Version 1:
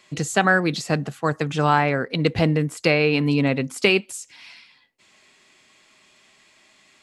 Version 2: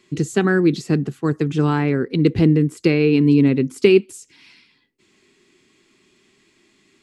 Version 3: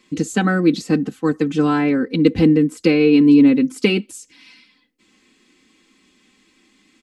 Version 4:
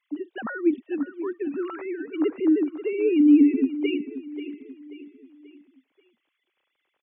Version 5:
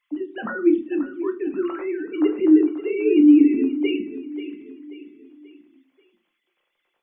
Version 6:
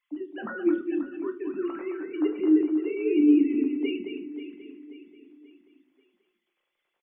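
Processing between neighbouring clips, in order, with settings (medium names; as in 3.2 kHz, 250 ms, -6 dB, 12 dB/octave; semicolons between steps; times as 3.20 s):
resonant low shelf 480 Hz +8 dB, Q 3; trim -4.5 dB
comb 3.9 ms, depth 80%
formants replaced by sine waves; feedback delay 535 ms, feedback 43%, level -13 dB; trim -7.5 dB
simulated room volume 130 m³, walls furnished, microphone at 0.88 m; trim +1.5 dB
delay 216 ms -7.5 dB; trim -6.5 dB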